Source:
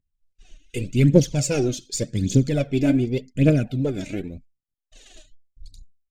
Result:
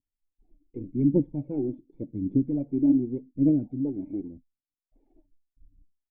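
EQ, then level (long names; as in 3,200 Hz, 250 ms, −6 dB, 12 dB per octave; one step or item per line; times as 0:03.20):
formant resonators in series u
+1.0 dB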